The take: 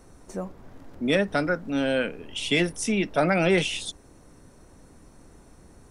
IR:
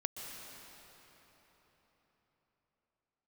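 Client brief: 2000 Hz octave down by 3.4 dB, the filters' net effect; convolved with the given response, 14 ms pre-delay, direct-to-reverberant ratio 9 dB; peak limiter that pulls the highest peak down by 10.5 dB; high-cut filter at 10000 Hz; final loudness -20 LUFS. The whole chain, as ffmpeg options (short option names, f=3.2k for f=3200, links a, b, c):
-filter_complex "[0:a]lowpass=10k,equalizer=f=2k:t=o:g=-4.5,alimiter=limit=-22.5dB:level=0:latency=1,asplit=2[a][b];[1:a]atrim=start_sample=2205,adelay=14[c];[b][c]afir=irnorm=-1:irlink=0,volume=-10dB[d];[a][d]amix=inputs=2:normalize=0,volume=12dB"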